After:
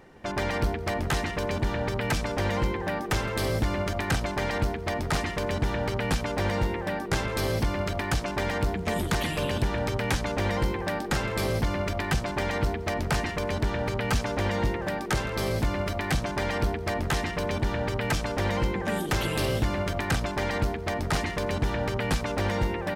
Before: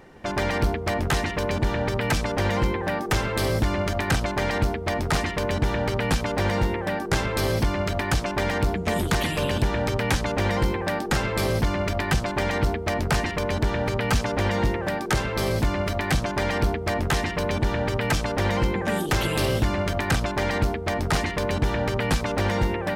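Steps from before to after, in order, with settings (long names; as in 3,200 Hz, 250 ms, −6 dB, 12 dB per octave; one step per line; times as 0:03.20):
repeating echo 165 ms, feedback 50%, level −20 dB
level −3.5 dB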